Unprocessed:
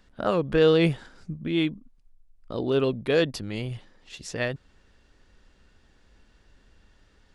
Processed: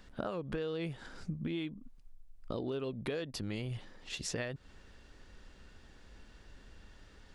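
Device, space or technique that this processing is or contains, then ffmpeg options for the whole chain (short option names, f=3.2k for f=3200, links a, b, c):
serial compression, peaks first: -af "acompressor=threshold=-31dB:ratio=10,acompressor=threshold=-41dB:ratio=2,volume=3dB"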